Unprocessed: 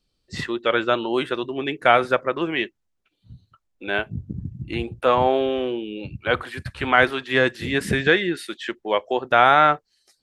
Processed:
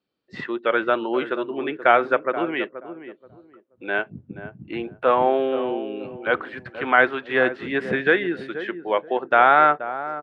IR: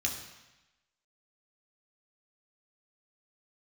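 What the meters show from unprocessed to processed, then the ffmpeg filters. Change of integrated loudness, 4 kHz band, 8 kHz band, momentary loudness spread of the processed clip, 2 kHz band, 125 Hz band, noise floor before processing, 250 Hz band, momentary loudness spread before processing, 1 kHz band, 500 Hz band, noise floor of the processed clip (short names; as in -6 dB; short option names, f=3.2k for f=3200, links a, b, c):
-0.5 dB, -8.0 dB, n/a, 17 LU, 0.0 dB, -9.5 dB, -74 dBFS, -1.0 dB, 14 LU, 0.0 dB, 0.0 dB, -60 dBFS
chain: -filter_complex "[0:a]highpass=230,lowpass=2.2k,equalizer=f=1.5k:t=o:w=0.21:g=2.5,asplit=2[a][b];[b]adelay=479,lowpass=f=860:p=1,volume=-10.5dB,asplit=2[c][d];[d]adelay=479,lowpass=f=860:p=1,volume=0.26,asplit=2[e][f];[f]adelay=479,lowpass=f=860:p=1,volume=0.26[g];[a][c][e][g]amix=inputs=4:normalize=0"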